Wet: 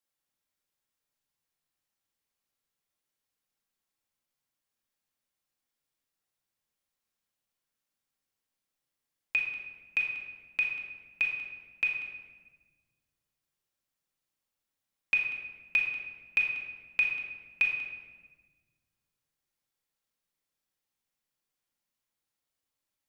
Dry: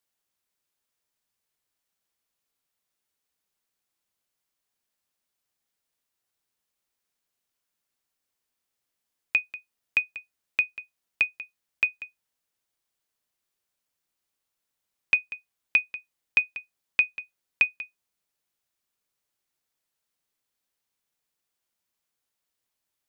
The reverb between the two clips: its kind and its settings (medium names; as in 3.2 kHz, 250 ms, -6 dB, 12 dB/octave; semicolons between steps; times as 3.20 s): simulated room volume 1200 m³, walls mixed, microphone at 2.2 m; trim -7.5 dB